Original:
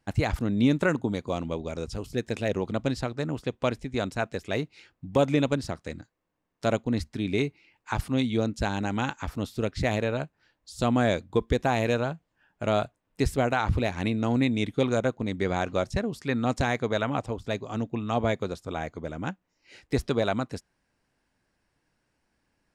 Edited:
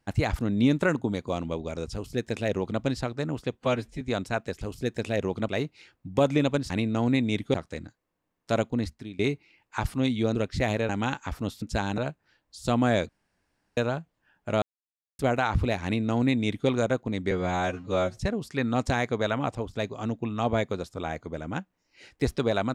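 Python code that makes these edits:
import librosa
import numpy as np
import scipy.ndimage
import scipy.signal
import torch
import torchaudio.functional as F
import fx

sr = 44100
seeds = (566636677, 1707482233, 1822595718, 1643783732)

y = fx.edit(x, sr, fx.duplicate(start_s=1.93, length_s=0.88, to_s=4.47),
    fx.stretch_span(start_s=3.59, length_s=0.28, factor=1.5),
    fx.fade_out_to(start_s=6.87, length_s=0.46, floor_db=-18.5),
    fx.swap(start_s=8.49, length_s=0.36, other_s=9.58, other_length_s=0.54),
    fx.room_tone_fill(start_s=11.23, length_s=0.68),
    fx.silence(start_s=12.76, length_s=0.57),
    fx.duplicate(start_s=13.98, length_s=0.84, to_s=5.68),
    fx.stretch_span(start_s=15.45, length_s=0.43, factor=2.0), tone=tone)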